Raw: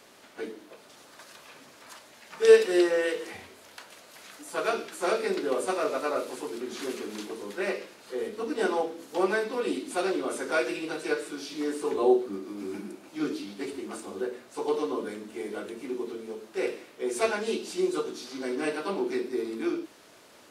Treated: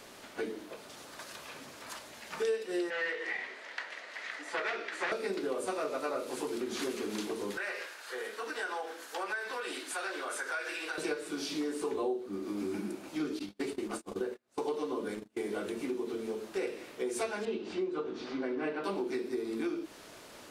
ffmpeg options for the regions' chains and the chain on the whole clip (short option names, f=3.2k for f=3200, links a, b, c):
-filter_complex "[0:a]asettb=1/sr,asplit=3[a][b][c];[a]atrim=end=2.904[d];[b]atrim=start=2.9:end=5.12,asetpts=PTS-STARTPTS,afade=t=in:d=0.004:c=qsin,afade=t=out:st=2.216:d=0.004:c=qsin,aeval=exprs='0.0562*(abs(mod(val(0)/0.0562+3,4)-2)-1)':c=same,highpass=410,lowpass=4.4k,equalizer=f=1.9k:t=o:w=0.41:g=13[e];[c]atrim=start=5.116[f];[d][e]acrossfade=d=0.004:c1=hsin:c2=qsin[g];[g][f]acrossfade=d=0.004:c1=qsin:c2=hsin,asettb=1/sr,asplit=3[h][i][j];[h]atrim=end=7.574[k];[i]atrim=start=7.57:end=10.98,asetpts=PTS-STARTPTS,afade=t=in:d=0.004:c=qsin,afade=t=out:st=3.406:d=0.004:c=qsin,highpass=730,equalizer=f=1.6k:w=3.3:g=9,acompressor=threshold=-38dB:ratio=2.5:attack=3.2:release=140:knee=1:detection=peak[l];[j]atrim=start=10.976[m];[k][l]acrossfade=d=0.004:c1=hsin:c2=qsin[n];[n][m]acrossfade=d=0.004:c1=qsin:c2=hsin,asettb=1/sr,asplit=3[o][p][q];[o]atrim=end=13.394[r];[p]atrim=start=13.39:end=15.47,asetpts=PTS-STARTPTS,afade=t=in:d=0.004:c=qsin,afade=t=out:st=2.076:d=0.004:c=qsin,agate=range=-37dB:threshold=-39dB:ratio=16:release=100:detection=peak,acompressor=mode=upward:threshold=-52dB:ratio=2.5:attack=3.2:release=140:knee=2.83:detection=peak[s];[q]atrim=start=15.466[t];[r][s]acrossfade=d=0.004:c1=hsin:c2=qsin[u];[u][t]acrossfade=d=0.004:c1=qsin:c2=hsin,asettb=1/sr,asplit=3[v][w][x];[v]atrim=end=17.454[y];[w]atrim=start=17.45:end=18.84,asetpts=PTS-STARTPTS,afade=t=in:d=0.004:c=qsin,afade=t=out:st=1.386:d=0.004:c=qsin,lowpass=2.4k,bandreject=f=60:t=h:w=6,bandreject=f=120:t=h:w=6,bandreject=f=180:t=h:w=6,bandreject=f=240:t=h:w=6,bandreject=f=300:t=h:w=6,bandreject=f=360:t=h:w=6,bandreject=f=420:t=h:w=6,bandreject=f=480:t=h:w=6,acompressor=mode=upward:threshold=-39dB:ratio=2.5:attack=3.2:release=140:knee=2.83:detection=peak[z];[x]atrim=start=18.836[aa];[y][z]acrossfade=d=0.004:c1=hsin:c2=qsin[ab];[ab][aa]acrossfade=d=0.004:c1=qsin:c2=hsin,lowshelf=f=68:g=11,acompressor=threshold=-35dB:ratio=5,volume=3dB"